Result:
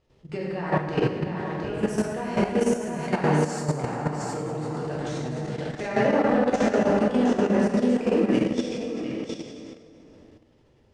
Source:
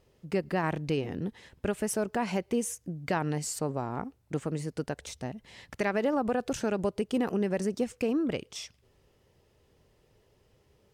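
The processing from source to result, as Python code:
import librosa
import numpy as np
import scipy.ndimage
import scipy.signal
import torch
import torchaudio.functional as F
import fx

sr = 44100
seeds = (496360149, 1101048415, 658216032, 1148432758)

y = scipy.signal.sosfilt(scipy.signal.butter(2, 6100.0, 'lowpass', fs=sr, output='sos'), x)
y = y + 10.0 ** (-5.0 / 20.0) * np.pad(y, (int(713 * sr / 1000.0), 0))[:len(y)]
y = fx.rev_plate(y, sr, seeds[0], rt60_s=2.8, hf_ratio=0.6, predelay_ms=0, drr_db=-8.0)
y = fx.level_steps(y, sr, step_db=10)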